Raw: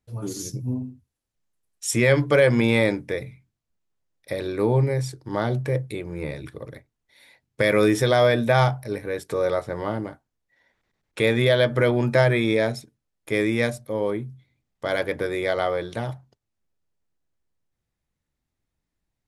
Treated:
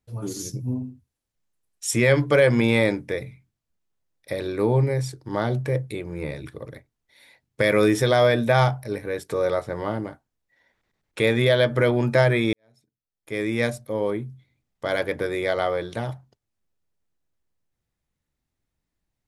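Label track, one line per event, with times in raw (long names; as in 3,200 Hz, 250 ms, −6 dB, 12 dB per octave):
12.530000	13.660000	fade in quadratic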